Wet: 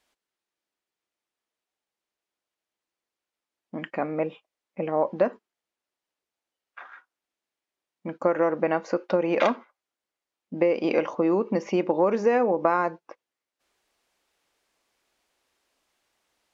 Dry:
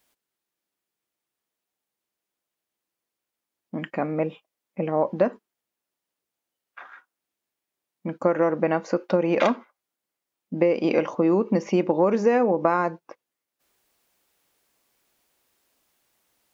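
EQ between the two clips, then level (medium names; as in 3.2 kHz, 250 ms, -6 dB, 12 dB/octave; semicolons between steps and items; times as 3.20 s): distance through air 51 m; peaking EQ 140 Hz -6.5 dB 2 oct; 0.0 dB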